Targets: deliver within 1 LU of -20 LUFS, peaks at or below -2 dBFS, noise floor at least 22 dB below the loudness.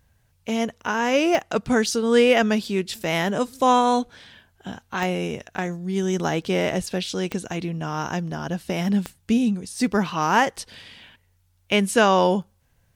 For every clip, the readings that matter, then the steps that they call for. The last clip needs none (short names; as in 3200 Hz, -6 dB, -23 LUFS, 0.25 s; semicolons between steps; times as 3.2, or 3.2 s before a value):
clicks 4; loudness -22.5 LUFS; peak -3.5 dBFS; loudness target -20.0 LUFS
-> de-click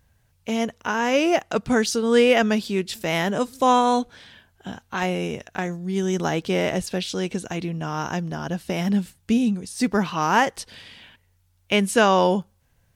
clicks 0; loudness -22.5 LUFS; peak -3.5 dBFS; loudness target -20.0 LUFS
-> gain +2.5 dB; limiter -2 dBFS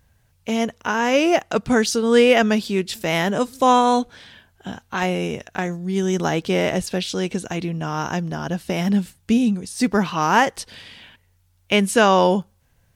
loudness -20.0 LUFS; peak -2.0 dBFS; noise floor -62 dBFS